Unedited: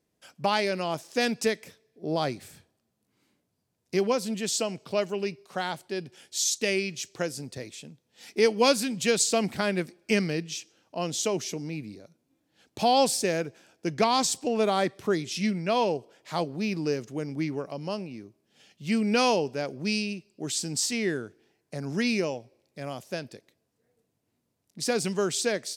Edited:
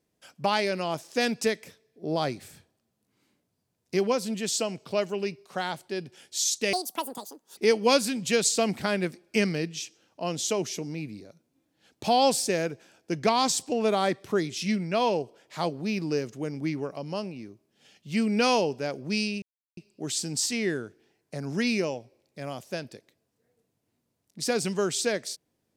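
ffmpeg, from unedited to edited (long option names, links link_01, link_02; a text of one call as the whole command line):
ffmpeg -i in.wav -filter_complex "[0:a]asplit=4[link_01][link_02][link_03][link_04];[link_01]atrim=end=6.734[link_05];[link_02]atrim=start=6.73:end=8.32,asetpts=PTS-STARTPTS,asetrate=83349,aresample=44100[link_06];[link_03]atrim=start=8.316:end=20.17,asetpts=PTS-STARTPTS,afade=type=out:start_time=11.85:duration=0.004:curve=hsin,apad=pad_dur=0.35[link_07];[link_04]atrim=start=20.17,asetpts=PTS-STARTPTS,afade=type=in:duration=0.004:curve=hsin[link_08];[link_05][link_06]acrossfade=duration=0.004:curve1=hsin:curve2=hsin[link_09];[link_07][link_08]concat=n=2:v=0:a=1[link_10];[link_09][link_10]acrossfade=duration=0.004:curve1=hsin:curve2=hsin" out.wav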